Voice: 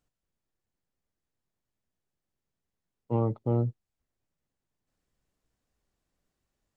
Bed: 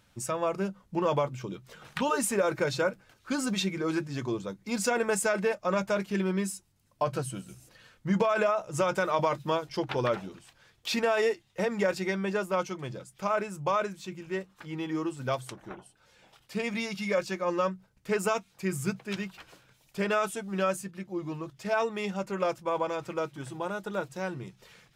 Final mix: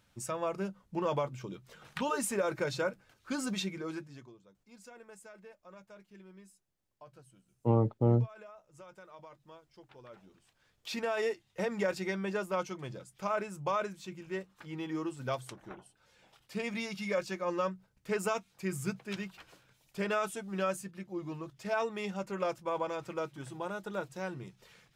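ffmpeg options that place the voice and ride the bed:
-filter_complex "[0:a]adelay=4550,volume=0.5dB[a];[1:a]volume=16dB,afade=t=out:st=3.54:d=0.79:silence=0.0944061,afade=t=in:st=10.08:d=1.42:silence=0.0891251[b];[a][b]amix=inputs=2:normalize=0"

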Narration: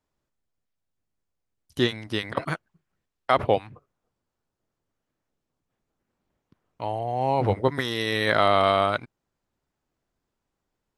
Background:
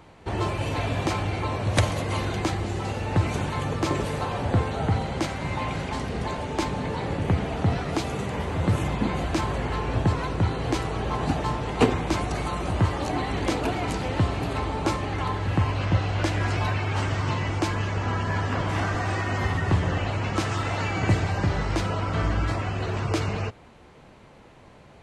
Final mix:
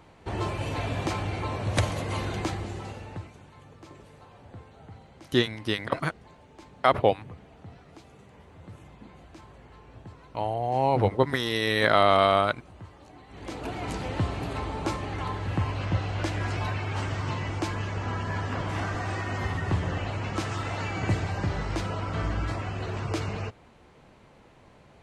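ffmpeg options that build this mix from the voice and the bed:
-filter_complex "[0:a]adelay=3550,volume=0dB[a];[1:a]volume=15dB,afade=t=out:st=2.4:d=0.92:silence=0.105925,afade=t=in:st=13.28:d=0.66:silence=0.11885[b];[a][b]amix=inputs=2:normalize=0"

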